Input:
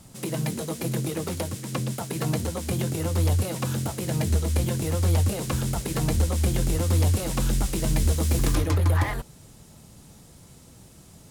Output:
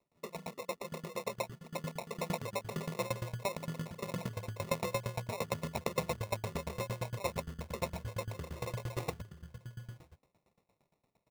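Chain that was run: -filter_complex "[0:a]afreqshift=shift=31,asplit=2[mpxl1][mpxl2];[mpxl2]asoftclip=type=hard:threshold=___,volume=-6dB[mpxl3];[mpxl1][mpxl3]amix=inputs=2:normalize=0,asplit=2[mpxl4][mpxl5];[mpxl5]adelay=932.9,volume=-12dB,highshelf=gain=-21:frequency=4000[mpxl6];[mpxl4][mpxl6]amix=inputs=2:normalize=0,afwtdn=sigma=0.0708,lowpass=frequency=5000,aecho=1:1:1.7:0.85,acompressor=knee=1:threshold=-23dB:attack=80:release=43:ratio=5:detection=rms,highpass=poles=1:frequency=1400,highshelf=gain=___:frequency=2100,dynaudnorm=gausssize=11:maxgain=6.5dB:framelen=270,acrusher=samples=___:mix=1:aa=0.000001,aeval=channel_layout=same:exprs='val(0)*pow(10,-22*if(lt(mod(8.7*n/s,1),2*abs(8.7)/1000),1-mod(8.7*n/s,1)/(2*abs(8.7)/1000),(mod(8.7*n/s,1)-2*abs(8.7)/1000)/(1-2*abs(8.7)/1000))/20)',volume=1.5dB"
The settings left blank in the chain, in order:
-21dB, -10.5, 28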